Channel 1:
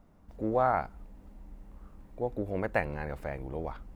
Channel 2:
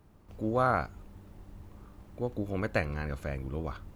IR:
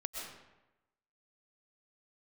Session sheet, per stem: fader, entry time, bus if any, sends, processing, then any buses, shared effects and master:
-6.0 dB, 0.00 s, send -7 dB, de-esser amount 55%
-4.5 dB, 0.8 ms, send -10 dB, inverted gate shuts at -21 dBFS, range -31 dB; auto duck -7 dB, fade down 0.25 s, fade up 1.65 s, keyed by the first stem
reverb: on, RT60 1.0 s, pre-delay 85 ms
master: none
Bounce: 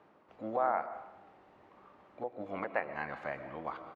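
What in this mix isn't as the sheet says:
stem 2 -4.5 dB -> +5.0 dB; master: extra band-pass 420–2500 Hz

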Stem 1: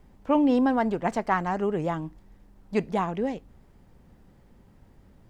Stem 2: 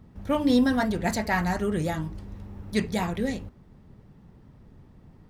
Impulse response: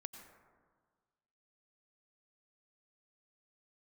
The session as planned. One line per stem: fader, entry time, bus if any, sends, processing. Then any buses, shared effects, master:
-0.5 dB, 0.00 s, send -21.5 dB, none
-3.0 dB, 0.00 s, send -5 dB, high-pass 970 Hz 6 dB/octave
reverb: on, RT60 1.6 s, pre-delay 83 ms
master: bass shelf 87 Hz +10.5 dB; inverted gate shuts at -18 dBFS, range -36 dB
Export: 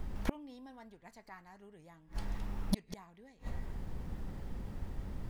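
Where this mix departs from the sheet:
stem 1 -0.5 dB -> +7.0 dB; stem 2 -3.0 dB -> +4.0 dB

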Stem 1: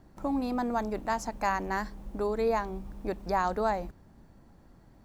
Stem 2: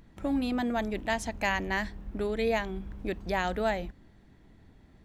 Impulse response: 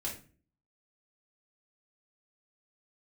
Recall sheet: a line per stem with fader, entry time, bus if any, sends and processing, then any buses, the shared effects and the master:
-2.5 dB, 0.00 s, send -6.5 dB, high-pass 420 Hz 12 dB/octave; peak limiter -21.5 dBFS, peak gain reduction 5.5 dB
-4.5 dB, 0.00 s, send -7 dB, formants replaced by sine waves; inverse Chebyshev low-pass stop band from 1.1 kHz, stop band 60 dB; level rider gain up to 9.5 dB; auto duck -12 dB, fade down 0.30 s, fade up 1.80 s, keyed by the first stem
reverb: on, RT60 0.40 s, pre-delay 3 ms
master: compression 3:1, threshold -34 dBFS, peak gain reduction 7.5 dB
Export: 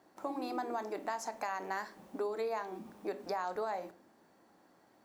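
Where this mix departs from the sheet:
stem 1: send -6.5 dB -> -0.5 dB; reverb return -8.0 dB

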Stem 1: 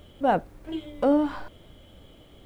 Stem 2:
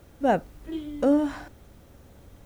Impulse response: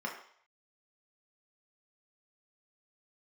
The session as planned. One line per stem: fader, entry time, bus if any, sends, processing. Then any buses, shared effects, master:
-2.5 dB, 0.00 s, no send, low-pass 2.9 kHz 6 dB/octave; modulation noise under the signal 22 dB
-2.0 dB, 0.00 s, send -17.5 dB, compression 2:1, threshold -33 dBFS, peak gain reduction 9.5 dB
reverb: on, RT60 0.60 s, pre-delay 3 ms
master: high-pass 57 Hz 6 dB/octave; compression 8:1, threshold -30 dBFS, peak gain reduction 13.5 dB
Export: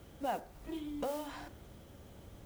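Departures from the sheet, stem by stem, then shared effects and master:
stem 1 -2.5 dB -> -10.5 dB; stem 2: polarity flipped

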